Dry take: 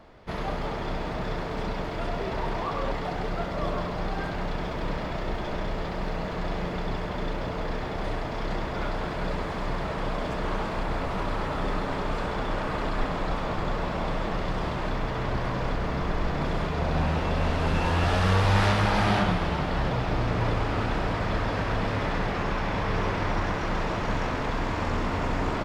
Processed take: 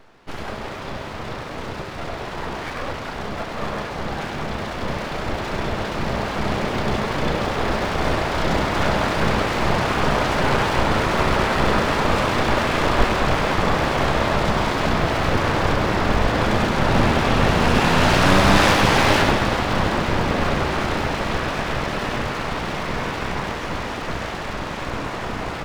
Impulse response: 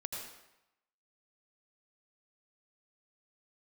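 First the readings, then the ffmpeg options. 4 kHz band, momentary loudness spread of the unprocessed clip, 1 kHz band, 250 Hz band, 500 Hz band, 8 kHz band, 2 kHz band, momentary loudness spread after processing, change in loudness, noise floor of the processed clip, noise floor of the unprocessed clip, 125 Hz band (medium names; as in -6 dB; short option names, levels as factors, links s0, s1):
+11.0 dB, 8 LU, +8.0 dB, +7.5 dB, +7.5 dB, +14.0 dB, +10.0 dB, 13 LU, +8.0 dB, -31 dBFS, -32 dBFS, +4.5 dB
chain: -filter_complex "[0:a]dynaudnorm=f=750:g=17:m=3.76,aeval=exprs='abs(val(0))':c=same,asplit=2[s0][s1];[1:a]atrim=start_sample=2205[s2];[s1][s2]afir=irnorm=-1:irlink=0,volume=0.631[s3];[s0][s3]amix=inputs=2:normalize=0"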